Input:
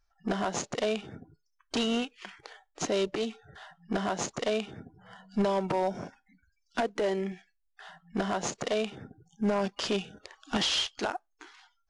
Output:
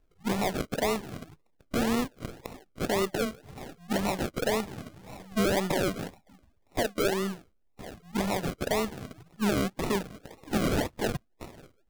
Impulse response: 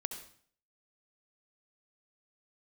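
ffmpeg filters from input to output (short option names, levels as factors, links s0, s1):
-filter_complex "[0:a]aeval=exprs='if(lt(val(0),0),0.708*val(0),val(0))':c=same,asplit=2[s0][s1];[s1]acompressor=threshold=0.00794:ratio=6,volume=0.841[s2];[s0][s2]amix=inputs=2:normalize=0,acrusher=samples=39:mix=1:aa=0.000001:lfo=1:lforange=23.4:lforate=1.9,aeval=exprs='0.112*(cos(1*acos(clip(val(0)/0.112,-1,1)))-cos(1*PI/2))+0.00562*(cos(5*acos(clip(val(0)/0.112,-1,1)))-cos(5*PI/2))':c=same,volume=1.12"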